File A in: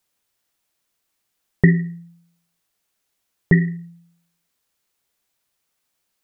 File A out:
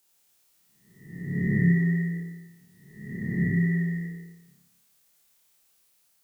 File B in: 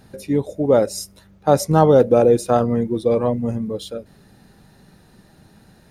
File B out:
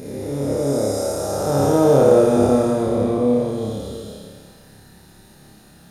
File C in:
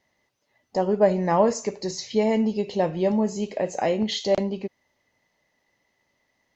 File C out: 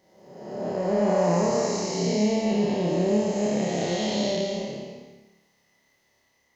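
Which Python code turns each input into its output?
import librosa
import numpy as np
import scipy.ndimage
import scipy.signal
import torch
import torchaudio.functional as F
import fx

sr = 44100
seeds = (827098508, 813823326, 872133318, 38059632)

y = fx.spec_blur(x, sr, span_ms=657.0)
y = fx.high_shelf(y, sr, hz=4600.0, db=8.0)
y = fx.room_flutter(y, sr, wall_m=4.9, rt60_s=0.59)
y = F.gain(torch.from_numpy(y), 1.5).numpy()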